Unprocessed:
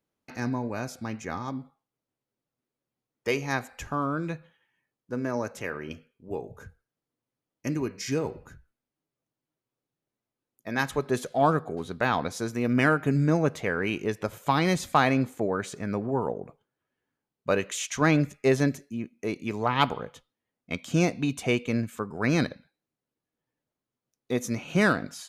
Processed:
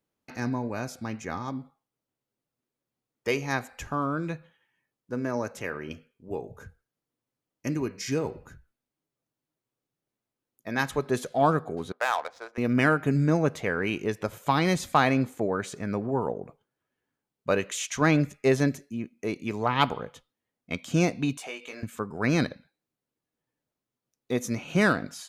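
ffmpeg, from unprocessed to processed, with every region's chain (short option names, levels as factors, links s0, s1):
-filter_complex "[0:a]asettb=1/sr,asplit=3[s0][s1][s2];[s0]atrim=end=11.924[s3];[s1]atrim=start=11.92:end=12.58,asetpts=PTS-STARTPTS,afade=t=in:d=0.004:c=qsin,afade=t=out:st=0.656:d=0.004:c=qsin,highpass=f=580:w=0.5412,highpass=f=580:w=1.3066,adynamicsmooth=sensitivity=6:basefreq=1100[s4];[s2]atrim=start=12.576[s5];[s3][s4]acrossfade=d=0.004:c1=hsin:c2=qsin[s6];[s6][s5]acrossfade=d=0.004:c1=qsin:c2=hsin,asettb=1/sr,asplit=3[s7][s8][s9];[s7]atrim=end=21.374[s10];[s8]atrim=start=21.37:end=21.83,asetpts=PTS-STARTPTS,afade=t=in:d=0.004:c=qsin,afade=t=out:st=0.456:d=0.004:c=qsin,highpass=590,acompressor=threshold=0.0112:ratio=2.5:attack=3.2:release=140:knee=1:detection=peak,asplit=2[s11][s12];[s12]adelay=20,volume=0.631[s13];[s11][s13]amix=inputs=2:normalize=0,atrim=end_sample=20286[s14];[s9]atrim=start=21.826[s15];[s10][s14]acrossfade=d=0.004:c1=hsin:c2=qsin[s16];[s16][s15]acrossfade=d=0.004:c1=qsin:c2=hsin"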